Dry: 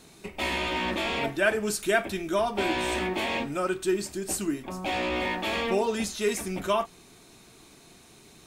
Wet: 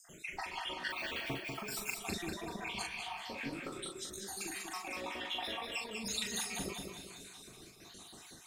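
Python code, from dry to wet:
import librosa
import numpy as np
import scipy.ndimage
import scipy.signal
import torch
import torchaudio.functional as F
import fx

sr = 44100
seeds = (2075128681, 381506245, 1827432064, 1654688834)

p1 = fx.spec_dropout(x, sr, seeds[0], share_pct=68)
p2 = fx.low_shelf(p1, sr, hz=490.0, db=-5.5)
p3 = fx.spec_repair(p2, sr, seeds[1], start_s=2.67, length_s=0.24, low_hz=230.0, high_hz=1400.0, source='after')
p4 = fx.over_compress(p3, sr, threshold_db=-41.0, ratio=-1.0)
p5 = fx.dmg_crackle(p4, sr, seeds[2], per_s=330.0, level_db=-65.0)
p6 = fx.rotary_switch(p5, sr, hz=6.7, then_hz=1.1, switch_at_s=5.19)
p7 = fx.doubler(p6, sr, ms=40.0, db=-4.5)
p8 = p7 + fx.echo_feedback(p7, sr, ms=193, feedback_pct=45, wet_db=-5, dry=0)
p9 = fx.resample_bad(p8, sr, factor=2, down='none', up='hold', at=(0.9, 1.99))
y = fx.detune_double(p9, sr, cents=58, at=(2.87, 4.37), fade=0.02)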